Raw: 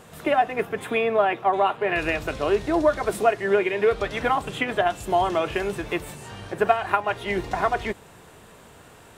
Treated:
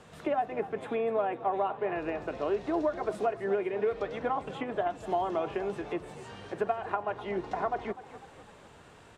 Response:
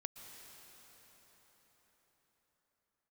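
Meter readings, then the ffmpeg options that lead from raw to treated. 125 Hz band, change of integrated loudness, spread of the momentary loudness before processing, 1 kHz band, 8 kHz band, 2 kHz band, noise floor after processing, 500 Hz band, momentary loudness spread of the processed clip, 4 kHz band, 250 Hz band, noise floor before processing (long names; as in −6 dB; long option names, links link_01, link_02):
−10.0 dB, −8.5 dB, 8 LU, −9.0 dB, below −15 dB, −14.0 dB, −54 dBFS, −7.5 dB, 8 LU, −15.0 dB, −7.0 dB, −49 dBFS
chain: -filter_complex "[0:a]lowpass=6700,acrossover=split=160|1200[link_01][link_02][link_03];[link_01]acompressor=threshold=-49dB:ratio=4[link_04];[link_02]acompressor=threshold=-20dB:ratio=4[link_05];[link_03]acompressor=threshold=-43dB:ratio=4[link_06];[link_04][link_05][link_06]amix=inputs=3:normalize=0,asplit=2[link_07][link_08];[link_08]asplit=5[link_09][link_10][link_11][link_12][link_13];[link_09]adelay=250,afreqshift=36,volume=-15dB[link_14];[link_10]adelay=500,afreqshift=72,volume=-21.2dB[link_15];[link_11]adelay=750,afreqshift=108,volume=-27.4dB[link_16];[link_12]adelay=1000,afreqshift=144,volume=-33.6dB[link_17];[link_13]adelay=1250,afreqshift=180,volume=-39.8dB[link_18];[link_14][link_15][link_16][link_17][link_18]amix=inputs=5:normalize=0[link_19];[link_07][link_19]amix=inputs=2:normalize=0,volume=-5.5dB"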